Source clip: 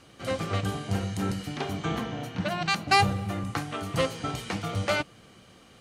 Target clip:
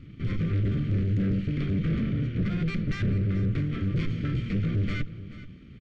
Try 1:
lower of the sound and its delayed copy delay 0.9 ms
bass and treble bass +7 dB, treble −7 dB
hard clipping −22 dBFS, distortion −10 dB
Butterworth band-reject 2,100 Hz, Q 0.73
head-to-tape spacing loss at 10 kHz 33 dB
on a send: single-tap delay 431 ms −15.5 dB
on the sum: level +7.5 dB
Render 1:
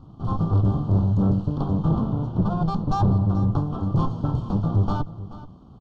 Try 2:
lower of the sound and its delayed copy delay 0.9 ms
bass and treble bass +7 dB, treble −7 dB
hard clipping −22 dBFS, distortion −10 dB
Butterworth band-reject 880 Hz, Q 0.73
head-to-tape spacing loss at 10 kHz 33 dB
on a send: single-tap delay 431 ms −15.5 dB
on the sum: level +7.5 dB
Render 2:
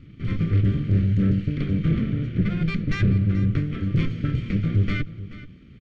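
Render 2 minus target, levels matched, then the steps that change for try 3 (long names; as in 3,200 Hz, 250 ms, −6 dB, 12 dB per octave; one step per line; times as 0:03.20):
hard clipping: distortion −6 dB
change: hard clipping −30 dBFS, distortion −5 dB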